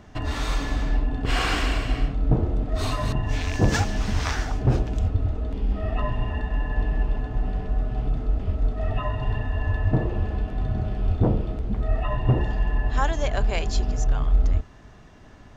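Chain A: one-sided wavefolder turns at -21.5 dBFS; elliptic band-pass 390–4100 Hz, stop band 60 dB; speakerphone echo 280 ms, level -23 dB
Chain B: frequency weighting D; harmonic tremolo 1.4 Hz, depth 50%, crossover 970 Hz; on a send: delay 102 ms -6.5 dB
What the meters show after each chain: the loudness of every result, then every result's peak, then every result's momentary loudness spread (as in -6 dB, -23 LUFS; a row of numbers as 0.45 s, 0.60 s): -34.5 LUFS, -28.5 LUFS; -13.5 dBFS, -9.0 dBFS; 12 LU, 14 LU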